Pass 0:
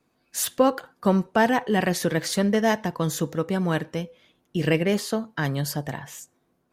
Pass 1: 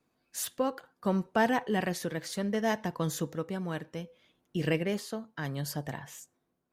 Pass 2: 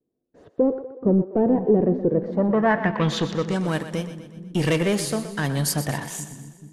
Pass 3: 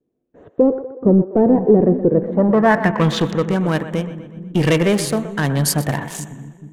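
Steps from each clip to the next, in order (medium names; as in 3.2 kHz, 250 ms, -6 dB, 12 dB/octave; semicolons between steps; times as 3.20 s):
tremolo 0.67 Hz, depth 45%; trim -6 dB
waveshaping leveller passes 3; low-pass sweep 420 Hz -> 10 kHz, 2.09–3.69 s; two-band feedback delay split 330 Hz, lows 430 ms, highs 123 ms, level -11.5 dB
local Wiener filter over 9 samples; trim +6 dB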